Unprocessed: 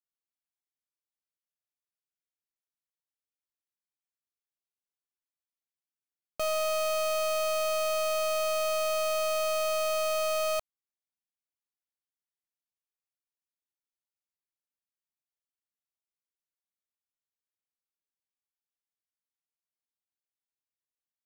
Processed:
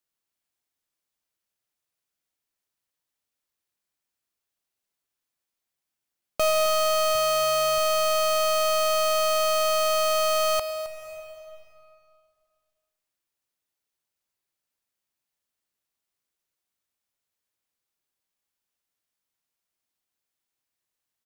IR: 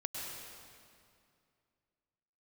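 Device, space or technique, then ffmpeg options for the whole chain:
compressed reverb return: -filter_complex "[0:a]asettb=1/sr,asplit=3[a][b][c];[a]atrim=end=7.154[d];[b]atrim=start=7.15:end=7.78,asetpts=PTS-STARTPTS,afade=t=in:d=0.004:c=qsin,afade=t=out:st=0.626:d=0.004:c=qsin,lowshelf=f=100:t=q:w=3:g=-13[e];[c]atrim=start=7.776[f];[d][e]acrossfade=d=0.004:c1=hsin:c2=qsin[g];[g][f]acrossfade=d=0.004:c1=qsin:c2=hsin,asplit=2[h][i];[1:a]atrim=start_sample=2205[j];[i][j]afir=irnorm=-1:irlink=0,acompressor=threshold=-36dB:ratio=5,volume=-2.5dB[k];[h][k]amix=inputs=2:normalize=0,aecho=1:1:265:0.211,volume=5dB"

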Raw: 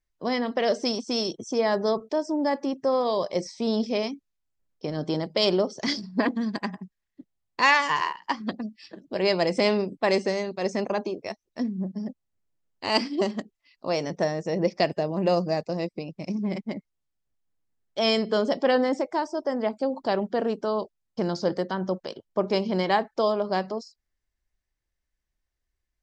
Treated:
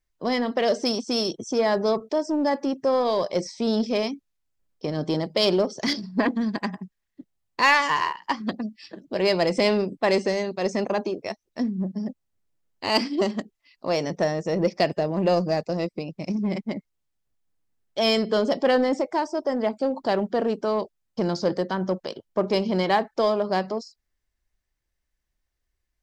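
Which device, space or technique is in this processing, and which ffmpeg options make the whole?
parallel distortion: -filter_complex "[0:a]asplit=2[a][b];[b]asoftclip=type=hard:threshold=-24.5dB,volume=-8.5dB[c];[a][c]amix=inputs=2:normalize=0,asettb=1/sr,asplit=3[d][e][f];[d]atrim=end=5.934[g];[e]atrim=start=5.93:end=6.58,asetpts=PTS-STARTPTS,afade=t=in:d=0.004:c=qsin,afade=t=out:st=0.646:d=0.004:c=qsin,acrossover=split=4700[h][i];[i]acompressor=threshold=-52dB:ratio=4:attack=1:release=60[j];[h][j]amix=inputs=2:normalize=0[k];[f]atrim=start=6.576[l];[g][k]acrossfade=d=0.004:c1=hsin:c2=qsin[m];[m][l]acrossfade=d=0.004:c1=qsin:c2=hsin"

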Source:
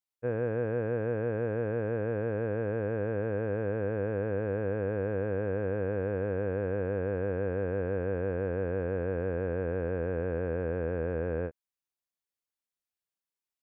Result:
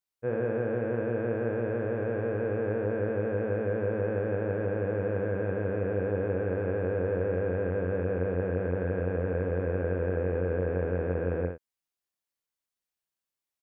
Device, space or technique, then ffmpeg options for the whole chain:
slapback doubling: -filter_complex "[0:a]asplit=3[a][b][c];[b]adelay=22,volume=-7dB[d];[c]adelay=68,volume=-5dB[e];[a][d][e]amix=inputs=3:normalize=0"

